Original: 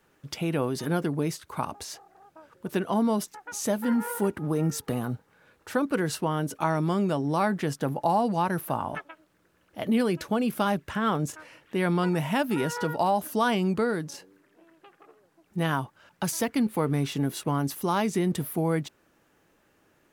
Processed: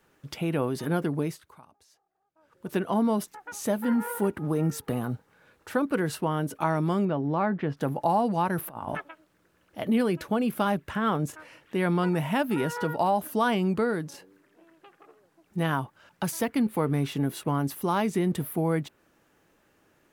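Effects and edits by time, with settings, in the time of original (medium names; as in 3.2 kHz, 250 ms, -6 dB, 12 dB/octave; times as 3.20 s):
1.18–2.76 s: dip -23 dB, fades 0.42 s linear
7.05–7.77 s: distance through air 330 m
8.58–9.09 s: compressor with a negative ratio -34 dBFS, ratio -0.5
whole clip: dynamic bell 6 kHz, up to -6 dB, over -51 dBFS, Q 0.95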